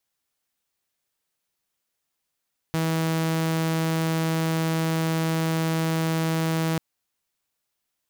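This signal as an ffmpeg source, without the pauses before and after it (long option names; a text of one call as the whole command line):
ffmpeg -f lavfi -i "aevalsrc='0.106*(2*mod(162*t,1)-1)':duration=4.04:sample_rate=44100" out.wav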